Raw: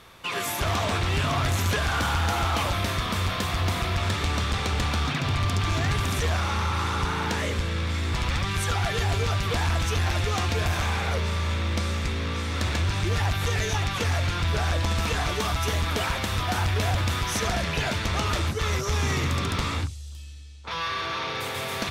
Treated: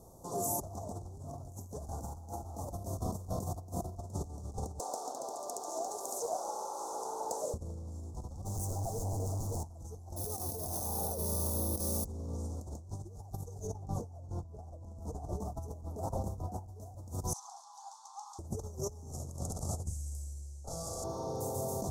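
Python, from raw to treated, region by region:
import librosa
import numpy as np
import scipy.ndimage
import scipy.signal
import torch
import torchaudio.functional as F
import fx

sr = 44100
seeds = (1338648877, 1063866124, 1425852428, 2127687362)

y = fx.chain(x, sr, fx.highpass(hz=470.0, slope=24),
    fx.doppler_dist(depth_ms=0.16), at=(4.79, 7.54))
y = fx.chain(y, sr, fx.lower_of_two(delay_ms=9.0),
    fx.clip_hard(threshold_db=-32.0), at=(8.45, 9.64))
y = fx.chain(y, sr, fx.weighting(curve='D'),
    fx.resample_bad(factor=3, down='filtered', up='hold'), at=(10.16, 12.05))
y = fx.chain(y, sr, fx.high_shelf(hz=2800.0, db=-9.5),
    fx.echo_single(ms=549, db=-21.0), at=(13.67, 16.68))
y = fx.chain(y, sr, fx.cheby_ripple_highpass(hz=780.0, ripple_db=9),
    fx.air_absorb(metres=66.0), at=(17.33, 18.39))
y = fx.chain(y, sr, fx.lower_of_two(delay_ms=1.5),
    fx.lowpass(hz=12000.0, slope=24),
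    fx.high_shelf(hz=6200.0, db=8.5), at=(19.11, 21.04))
y = scipy.signal.sosfilt(scipy.signal.ellip(3, 1.0, 80, [780.0, 6500.0], 'bandstop', fs=sr, output='sos'), y)
y = fx.over_compress(y, sr, threshold_db=-32.0, ratio=-0.5)
y = F.gain(torch.from_numpy(y), -5.5).numpy()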